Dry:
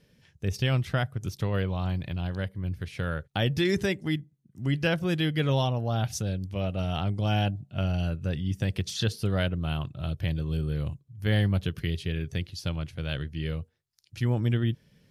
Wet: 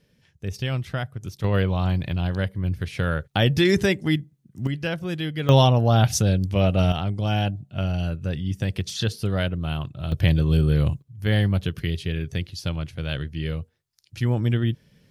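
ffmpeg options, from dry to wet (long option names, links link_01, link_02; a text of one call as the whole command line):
ffmpeg -i in.wav -af "asetnsamples=nb_out_samples=441:pad=0,asendcmd='1.44 volume volume 6.5dB;4.67 volume volume -1.5dB;5.49 volume volume 10dB;6.92 volume volume 2.5dB;10.12 volume volume 10dB;11.02 volume volume 3.5dB',volume=-1dB" out.wav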